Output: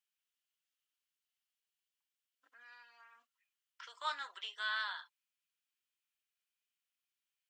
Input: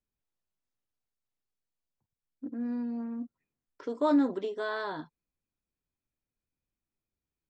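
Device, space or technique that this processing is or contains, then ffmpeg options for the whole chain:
headphones lying on a table: -filter_complex "[0:a]highpass=frequency=1300:width=0.5412,highpass=frequency=1300:width=1.3066,equalizer=frequency=3000:width_type=o:width=0.36:gain=9,asettb=1/sr,asplit=3[link_01][link_02][link_03];[link_01]atrim=end=2.634[link_04];[link_02]atrim=start=2.63:end=3.16,asetpts=PTS-STARTPTS,afade=type=in:duration=0.004:curve=qsin,afade=type=out:start_time=0.526:duration=0.004:curve=qsin,highpass=frequency=410:poles=1[link_05];[link_03]atrim=start=3.156[link_06];[link_04][link_05]acrossfade=duration=0.004:curve1=hsin:curve2=qsin[link_07];[link_07][link_06]acrossfade=duration=0.004:curve1=qsin:curve2=hsin,volume=2dB"

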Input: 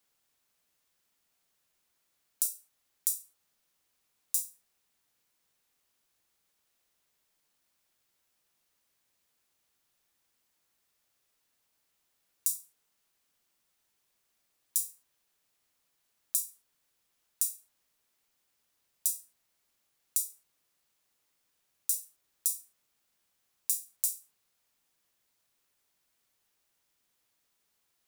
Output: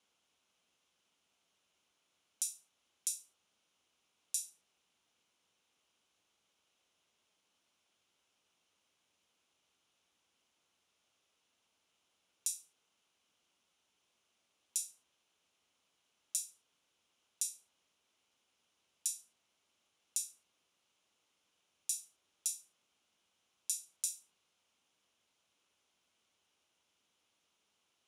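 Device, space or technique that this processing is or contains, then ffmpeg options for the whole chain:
car door speaker: -af "highpass=80,equalizer=frequency=130:width_type=q:width=4:gain=-7,equalizer=frequency=1800:width_type=q:width=4:gain=-7,equalizer=frequency=3000:width_type=q:width=4:gain=5,equalizer=frequency=4600:width_type=q:width=4:gain=-6,equalizer=frequency=8100:width_type=q:width=4:gain=-9,lowpass=frequency=8900:width=0.5412,lowpass=frequency=8900:width=1.3066,volume=2.5dB"

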